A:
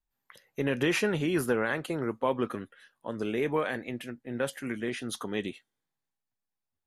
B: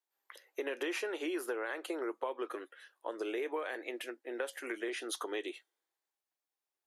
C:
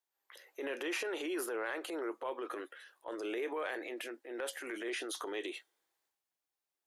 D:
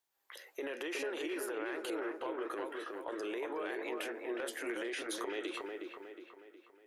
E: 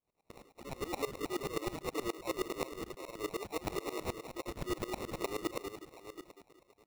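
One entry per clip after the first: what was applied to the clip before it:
elliptic high-pass filter 330 Hz, stop band 50 dB; downward compressor 6 to 1, threshold −35 dBFS, peak gain reduction 11.5 dB; level +1 dB
transient designer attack −7 dB, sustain +6 dB
downward compressor, threshold −42 dBFS, peak gain reduction 9 dB; delay with a low-pass on its return 364 ms, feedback 46%, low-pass 2,000 Hz, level −3 dB; level +4.5 dB
time-frequency cells dropped at random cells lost 22%; sample-rate reduction 1,600 Hz, jitter 0%; tremolo with a ramp in dB swelling 9.5 Hz, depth 21 dB; level +8 dB

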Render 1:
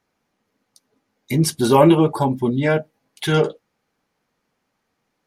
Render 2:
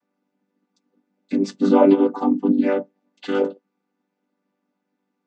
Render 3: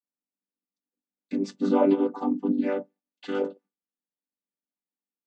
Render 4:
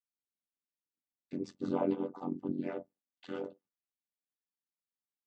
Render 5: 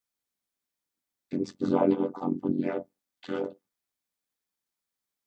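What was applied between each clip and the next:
channel vocoder with a chord as carrier major triad, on G3
noise gate with hold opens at −45 dBFS; level −7 dB
amplitude modulation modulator 88 Hz, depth 75%; level −7.5 dB
notch filter 2,800 Hz, Q 14; level +8 dB

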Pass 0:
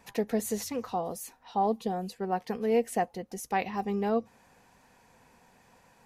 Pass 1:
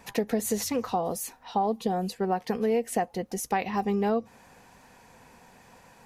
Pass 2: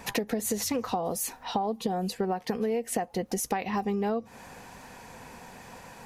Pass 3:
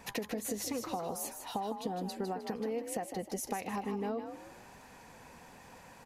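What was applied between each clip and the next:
downward compressor 6 to 1, threshold −29 dBFS, peak gain reduction 8.5 dB; level +6.5 dB
downward compressor, threshold −34 dBFS, peak gain reduction 12 dB; level +7.5 dB
echo with shifted repeats 155 ms, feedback 35%, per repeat +48 Hz, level −8 dB; level −8 dB

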